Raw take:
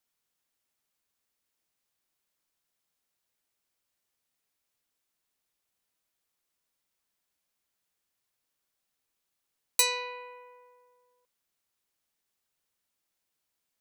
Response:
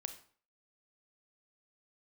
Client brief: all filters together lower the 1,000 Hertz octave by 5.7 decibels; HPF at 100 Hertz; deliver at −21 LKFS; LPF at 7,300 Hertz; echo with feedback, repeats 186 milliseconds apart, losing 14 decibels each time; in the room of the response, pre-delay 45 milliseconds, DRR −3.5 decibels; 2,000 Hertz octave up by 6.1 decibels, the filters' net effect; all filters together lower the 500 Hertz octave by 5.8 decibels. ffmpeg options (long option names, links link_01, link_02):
-filter_complex "[0:a]highpass=100,lowpass=7300,equalizer=frequency=500:width_type=o:gain=-5,equalizer=frequency=1000:width_type=o:gain=-6.5,equalizer=frequency=2000:width_type=o:gain=9,aecho=1:1:186|372:0.2|0.0399,asplit=2[link_01][link_02];[1:a]atrim=start_sample=2205,adelay=45[link_03];[link_02][link_03]afir=irnorm=-1:irlink=0,volume=6dB[link_04];[link_01][link_04]amix=inputs=2:normalize=0,volume=0.5dB"